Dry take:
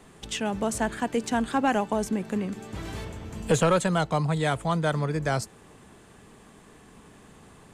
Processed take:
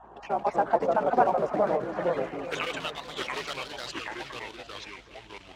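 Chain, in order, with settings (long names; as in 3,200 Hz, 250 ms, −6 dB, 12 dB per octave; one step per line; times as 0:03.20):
time-frequency cells dropped at random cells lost 21%
high-pass filter 240 Hz 12 dB per octave
spectral tilt −2 dB per octave
in parallel at −1 dB: downward compressor 16 to 1, threshold −38 dBFS, peak gain reduction 22.5 dB
on the sum: floating-point word with a short mantissa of 2 bits
time stretch by overlap-add 0.66×, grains 27 ms
band-pass filter sweep 930 Hz → 4,300 Hz, 0:01.07–0:02.93
mains hum 60 Hz, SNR 30 dB
delay with pitch and tempo change per echo 177 ms, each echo −3 semitones, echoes 2
on a send: delay that swaps between a low-pass and a high-pass 349 ms, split 870 Hz, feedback 59%, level −11.5 dB
on the sum: wrong playback speed 48 kHz file played as 44.1 kHz
one half of a high-frequency compander decoder only
level +8 dB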